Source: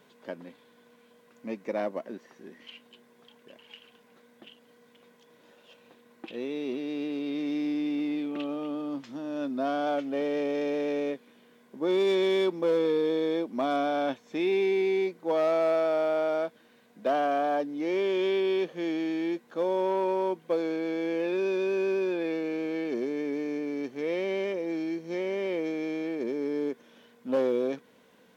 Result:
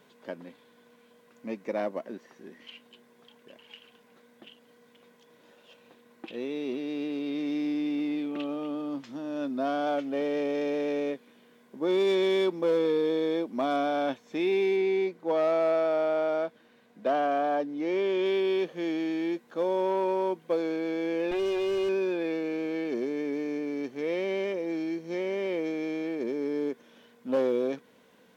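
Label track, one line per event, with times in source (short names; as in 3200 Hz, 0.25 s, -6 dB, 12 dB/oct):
14.760000	18.260000	high shelf 5700 Hz -7 dB
21.310000	21.890000	minimum comb delay 5 ms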